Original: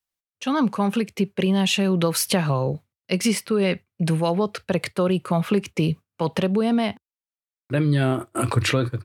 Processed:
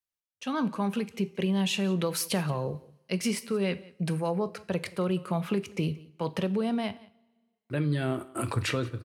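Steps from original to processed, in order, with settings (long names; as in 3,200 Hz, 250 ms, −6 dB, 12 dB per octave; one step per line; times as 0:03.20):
0:04.13–0:04.57: parametric band 3,400 Hz −11.5 dB 0.63 octaves
single-tap delay 177 ms −22 dB
coupled-rooms reverb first 0.43 s, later 1.6 s, from −21 dB, DRR 12.5 dB
level −8 dB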